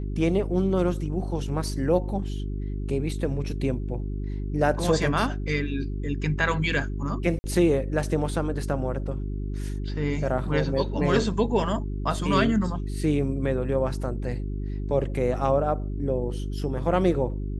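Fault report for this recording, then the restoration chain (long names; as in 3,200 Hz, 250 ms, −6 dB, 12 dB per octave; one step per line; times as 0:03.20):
mains hum 50 Hz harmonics 8 −30 dBFS
0:01.67: drop-out 2.1 ms
0:07.39–0:07.44: drop-out 50 ms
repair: hum removal 50 Hz, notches 8
repair the gap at 0:01.67, 2.1 ms
repair the gap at 0:07.39, 50 ms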